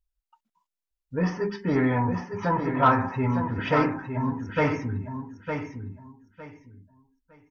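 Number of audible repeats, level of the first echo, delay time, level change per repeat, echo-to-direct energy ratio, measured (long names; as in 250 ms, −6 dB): 3, −7.0 dB, 908 ms, −13.0 dB, −7.0 dB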